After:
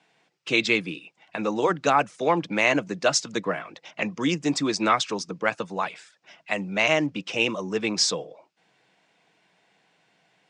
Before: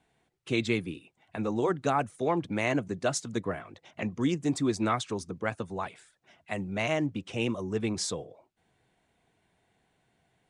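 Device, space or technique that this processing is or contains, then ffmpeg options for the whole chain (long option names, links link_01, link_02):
television speaker: -af "highpass=frequency=180:width=0.5412,highpass=frequency=180:width=1.3066,equalizer=frequency=240:width_type=q:width=4:gain=-10,equalizer=frequency=380:width_type=q:width=4:gain=-7,equalizer=frequency=710:width_type=q:width=4:gain=-3,equalizer=frequency=2600:width_type=q:width=4:gain=4,equalizer=frequency=5100:width_type=q:width=4:gain=6,lowpass=frequency=7400:width=0.5412,lowpass=frequency=7400:width=1.3066,volume=8.5dB"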